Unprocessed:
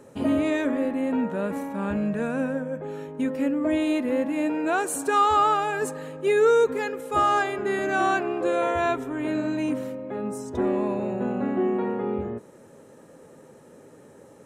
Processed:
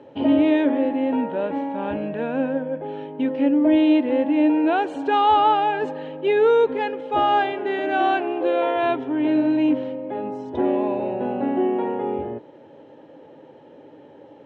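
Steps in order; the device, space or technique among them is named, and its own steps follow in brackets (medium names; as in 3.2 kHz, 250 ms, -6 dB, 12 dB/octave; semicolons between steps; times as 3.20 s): guitar cabinet (cabinet simulation 87–3900 Hz, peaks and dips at 200 Hz -7 dB, 300 Hz +9 dB, 570 Hz +5 dB, 860 Hz +9 dB, 1.2 kHz -7 dB, 3.1 kHz +9 dB); 7.52–8.83 s: Bessel high-pass 230 Hz, order 2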